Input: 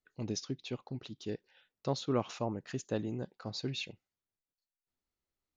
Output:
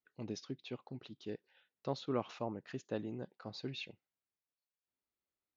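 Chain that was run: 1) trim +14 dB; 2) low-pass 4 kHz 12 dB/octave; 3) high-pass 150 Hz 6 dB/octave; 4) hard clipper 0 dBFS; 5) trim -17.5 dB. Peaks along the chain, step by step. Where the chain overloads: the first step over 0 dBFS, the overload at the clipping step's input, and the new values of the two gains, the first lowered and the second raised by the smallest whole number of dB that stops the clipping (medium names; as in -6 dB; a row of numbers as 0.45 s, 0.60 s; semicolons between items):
-5.0 dBFS, -5.0 dBFS, -4.0 dBFS, -4.0 dBFS, -21.5 dBFS; nothing clips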